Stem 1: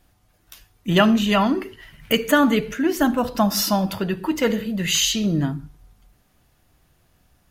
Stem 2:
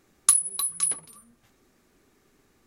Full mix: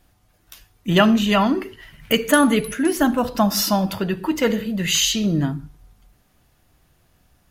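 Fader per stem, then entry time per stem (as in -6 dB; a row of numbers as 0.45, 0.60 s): +1.0, -9.5 dB; 0.00, 2.05 s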